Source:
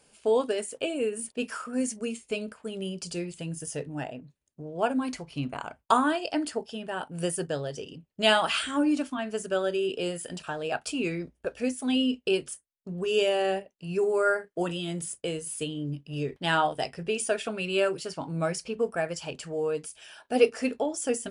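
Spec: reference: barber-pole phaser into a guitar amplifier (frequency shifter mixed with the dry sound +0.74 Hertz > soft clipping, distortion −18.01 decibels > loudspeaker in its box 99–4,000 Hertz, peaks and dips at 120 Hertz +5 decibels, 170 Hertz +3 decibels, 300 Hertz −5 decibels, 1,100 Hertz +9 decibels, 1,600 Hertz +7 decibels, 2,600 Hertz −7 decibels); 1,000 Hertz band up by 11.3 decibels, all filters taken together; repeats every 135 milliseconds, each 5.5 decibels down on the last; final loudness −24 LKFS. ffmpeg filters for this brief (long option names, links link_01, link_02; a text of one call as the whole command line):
ffmpeg -i in.wav -filter_complex "[0:a]equalizer=frequency=1000:width_type=o:gain=8,aecho=1:1:135|270|405|540|675|810|945:0.531|0.281|0.149|0.079|0.0419|0.0222|0.0118,asplit=2[link_01][link_02];[link_02]afreqshift=0.74[link_03];[link_01][link_03]amix=inputs=2:normalize=1,asoftclip=threshold=-11.5dB,highpass=99,equalizer=frequency=120:width_type=q:width=4:gain=5,equalizer=frequency=170:width_type=q:width=4:gain=3,equalizer=frequency=300:width_type=q:width=4:gain=-5,equalizer=frequency=1100:width_type=q:width=4:gain=9,equalizer=frequency=1600:width_type=q:width=4:gain=7,equalizer=frequency=2600:width_type=q:width=4:gain=-7,lowpass=frequency=4000:width=0.5412,lowpass=frequency=4000:width=1.3066,volume=1.5dB" out.wav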